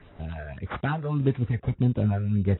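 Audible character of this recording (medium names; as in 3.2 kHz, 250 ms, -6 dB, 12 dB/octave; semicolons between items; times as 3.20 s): phasing stages 6, 1.7 Hz, lowest notch 240–2800 Hz; aliases and images of a low sample rate 6.7 kHz, jitter 0%; AAC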